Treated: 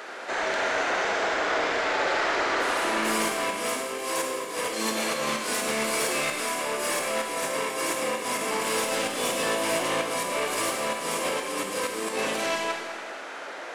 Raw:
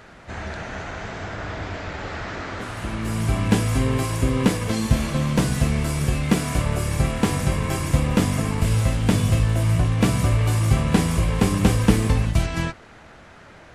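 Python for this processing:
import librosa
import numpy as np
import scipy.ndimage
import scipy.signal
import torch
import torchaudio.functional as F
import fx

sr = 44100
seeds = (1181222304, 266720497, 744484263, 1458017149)

y = scipy.signal.sosfilt(scipy.signal.butter(4, 350.0, 'highpass', fs=sr, output='sos'), x)
y = fx.over_compress(y, sr, threshold_db=-33.0, ratio=-0.5)
y = 10.0 ** (-26.5 / 20.0) * np.tanh(y / 10.0 ** (-26.5 / 20.0))
y = fx.rev_schroeder(y, sr, rt60_s=1.6, comb_ms=32, drr_db=2.0)
y = y * 10.0 ** (5.0 / 20.0)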